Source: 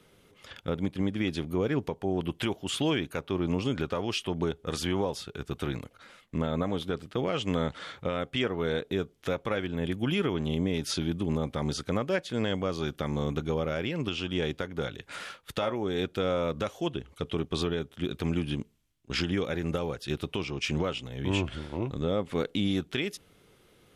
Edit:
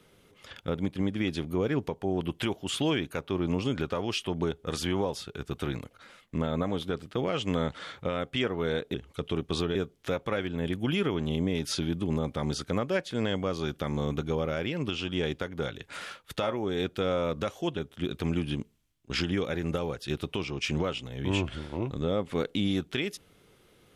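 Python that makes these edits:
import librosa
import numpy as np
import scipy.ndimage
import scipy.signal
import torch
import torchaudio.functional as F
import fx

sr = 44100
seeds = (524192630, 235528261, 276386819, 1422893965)

y = fx.edit(x, sr, fx.move(start_s=16.96, length_s=0.81, to_s=8.94), tone=tone)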